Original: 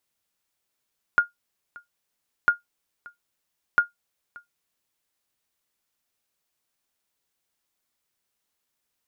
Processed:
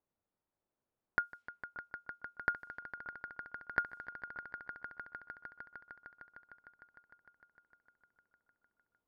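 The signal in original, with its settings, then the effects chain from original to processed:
sonar ping 1.42 kHz, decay 0.14 s, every 1.30 s, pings 3, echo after 0.58 s, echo -24.5 dB -9 dBFS
level-controlled noise filter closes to 830 Hz, open at -25.5 dBFS; compression 4:1, threshold -32 dBFS; on a send: echo with a slow build-up 152 ms, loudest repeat 5, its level -13.5 dB

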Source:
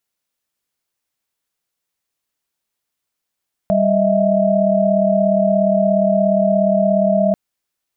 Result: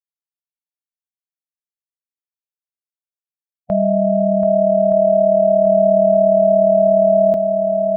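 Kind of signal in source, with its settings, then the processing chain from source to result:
chord G3/D#5/E5 sine, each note -16.5 dBFS 3.64 s
expander on every frequency bin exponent 2; on a send: shuffle delay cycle 1221 ms, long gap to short 1.5:1, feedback 48%, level -7 dB

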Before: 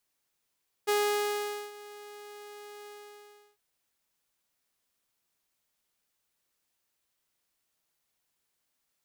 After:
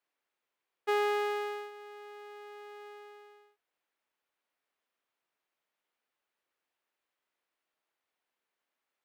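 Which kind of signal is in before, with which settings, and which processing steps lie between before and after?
ADSR saw 414 Hz, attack 20 ms, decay 820 ms, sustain -21 dB, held 2.00 s, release 701 ms -21 dBFS
three-band isolator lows -17 dB, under 270 Hz, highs -16 dB, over 3.1 kHz

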